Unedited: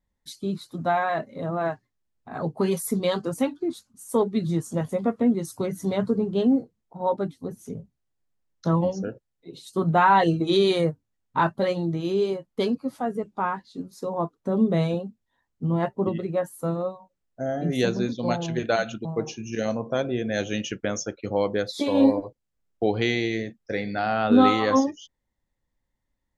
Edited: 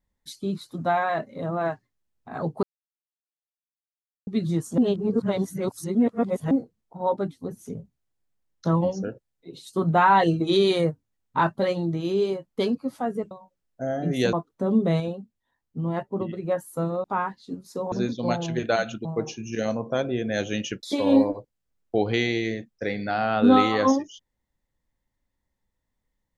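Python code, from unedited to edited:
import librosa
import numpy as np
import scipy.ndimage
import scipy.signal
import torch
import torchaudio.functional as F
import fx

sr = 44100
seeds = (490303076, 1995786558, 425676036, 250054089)

y = fx.edit(x, sr, fx.silence(start_s=2.63, length_s=1.64),
    fx.reverse_span(start_s=4.78, length_s=1.73),
    fx.swap(start_s=13.31, length_s=0.88, other_s=16.9, other_length_s=1.02),
    fx.clip_gain(start_s=14.86, length_s=1.45, db=-3.5),
    fx.cut(start_s=20.83, length_s=0.88), tone=tone)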